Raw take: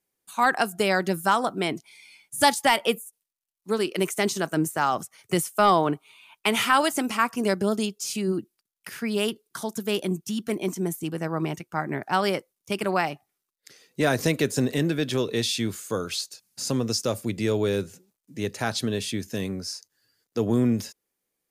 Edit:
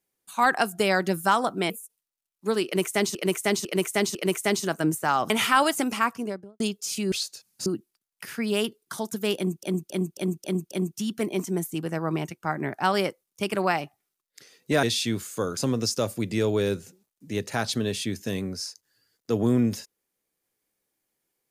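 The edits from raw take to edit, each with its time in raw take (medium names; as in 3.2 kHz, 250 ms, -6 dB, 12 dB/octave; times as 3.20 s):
1.70–2.93 s: delete
3.88–4.38 s: loop, 4 plays
5.03–6.48 s: delete
7.11–7.78 s: studio fade out
10.00–10.27 s: loop, 6 plays
14.12–15.36 s: delete
16.10–16.64 s: move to 8.30 s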